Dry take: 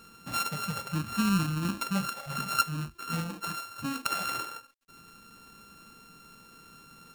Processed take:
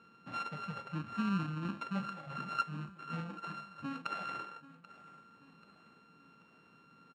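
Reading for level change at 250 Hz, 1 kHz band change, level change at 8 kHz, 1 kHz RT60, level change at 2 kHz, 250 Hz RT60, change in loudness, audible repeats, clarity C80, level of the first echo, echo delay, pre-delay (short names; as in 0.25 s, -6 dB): -7.0 dB, -6.5 dB, -25.5 dB, none, -8.5 dB, none, -8.0 dB, 4, none, -18.0 dB, 0.785 s, none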